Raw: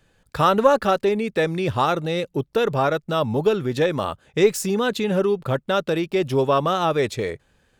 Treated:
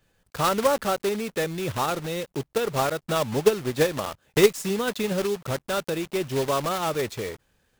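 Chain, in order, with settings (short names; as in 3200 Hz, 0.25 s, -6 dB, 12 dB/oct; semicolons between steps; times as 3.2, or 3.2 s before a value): block floating point 3-bit; 2.55–5.13 transient shaper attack +8 dB, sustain -2 dB; gain -6 dB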